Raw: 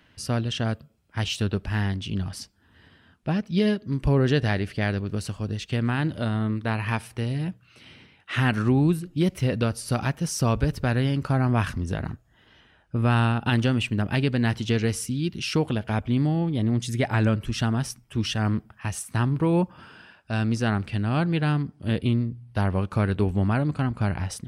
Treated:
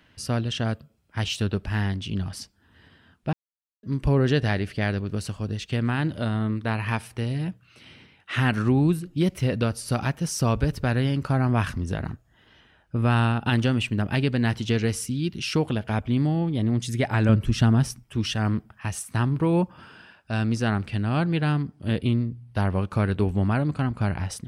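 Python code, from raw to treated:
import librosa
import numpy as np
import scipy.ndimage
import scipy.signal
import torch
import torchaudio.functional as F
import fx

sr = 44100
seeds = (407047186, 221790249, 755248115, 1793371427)

y = fx.low_shelf(x, sr, hz=360.0, db=7.0, at=(17.29, 18.03))
y = fx.edit(y, sr, fx.silence(start_s=3.33, length_s=0.5), tone=tone)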